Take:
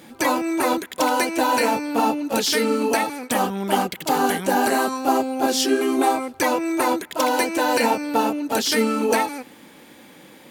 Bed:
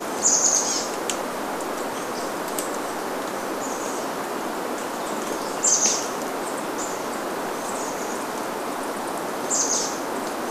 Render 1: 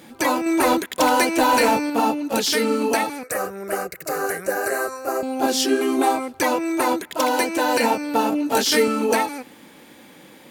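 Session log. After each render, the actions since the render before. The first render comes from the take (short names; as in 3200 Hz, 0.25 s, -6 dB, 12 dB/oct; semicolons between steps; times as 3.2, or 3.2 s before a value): 0.46–1.9 sample leveller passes 1; 3.23–5.23 fixed phaser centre 890 Hz, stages 6; 8.3–8.88 doubler 20 ms -2 dB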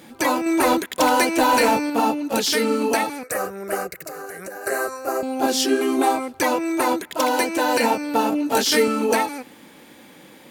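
4.07–4.67 compressor 12:1, threshold -30 dBFS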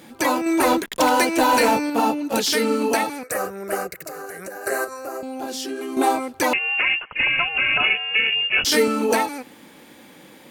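0.72–1.33 backlash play -37 dBFS; 4.84–5.97 compressor 3:1, threshold -29 dBFS; 6.53–8.65 inverted band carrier 3100 Hz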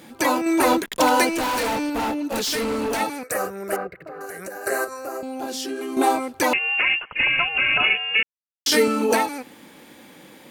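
1.31–3.01 hard clip -22 dBFS; 3.76–4.21 air absorption 470 m; 8.23–8.66 mute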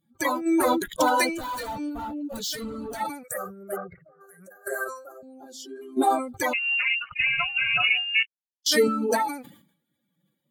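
per-bin expansion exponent 2; sustainer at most 95 dB/s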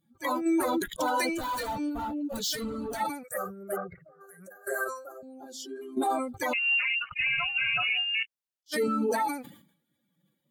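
limiter -20 dBFS, peak gain reduction 10 dB; attack slew limiter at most 530 dB/s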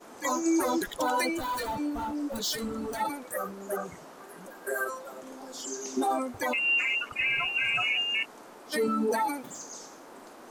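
add bed -20.5 dB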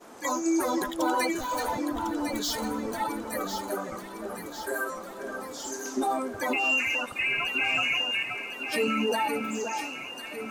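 echo with dull and thin repeats by turns 0.526 s, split 1600 Hz, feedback 75%, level -5.5 dB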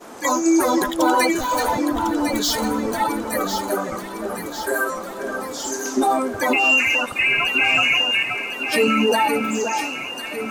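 gain +9 dB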